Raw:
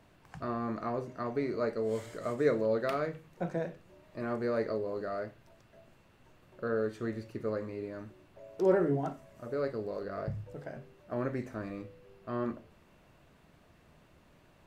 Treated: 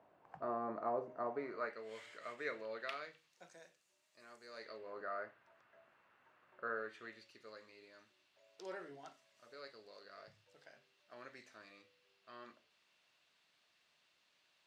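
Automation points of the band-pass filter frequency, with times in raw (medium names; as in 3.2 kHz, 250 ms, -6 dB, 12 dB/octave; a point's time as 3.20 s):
band-pass filter, Q 1.4
1.25 s 720 Hz
1.84 s 2.5 kHz
2.79 s 2.5 kHz
3.55 s 7.1 kHz
4.45 s 7.1 kHz
4.98 s 1.4 kHz
6.68 s 1.4 kHz
7.32 s 4.2 kHz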